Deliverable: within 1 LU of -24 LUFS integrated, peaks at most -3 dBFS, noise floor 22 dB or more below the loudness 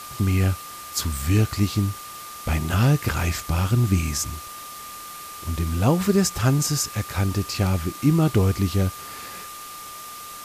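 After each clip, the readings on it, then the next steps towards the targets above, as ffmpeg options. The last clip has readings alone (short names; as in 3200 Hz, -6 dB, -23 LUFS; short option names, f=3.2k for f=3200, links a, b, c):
steady tone 1200 Hz; tone level -38 dBFS; noise floor -38 dBFS; noise floor target -45 dBFS; loudness -23.0 LUFS; peak -5.0 dBFS; loudness target -24.0 LUFS
-> -af "bandreject=f=1.2k:w=30"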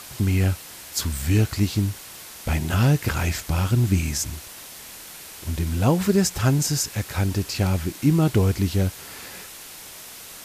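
steady tone none; noise floor -41 dBFS; noise floor target -45 dBFS
-> -af "afftdn=nr=6:nf=-41"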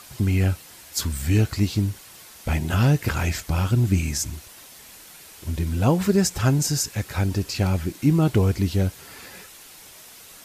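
noise floor -46 dBFS; loudness -23.0 LUFS; peak -5.5 dBFS; loudness target -24.0 LUFS
-> -af "volume=-1dB"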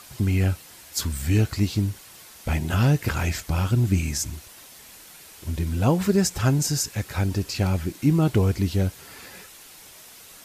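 loudness -24.0 LUFS; peak -6.5 dBFS; noise floor -47 dBFS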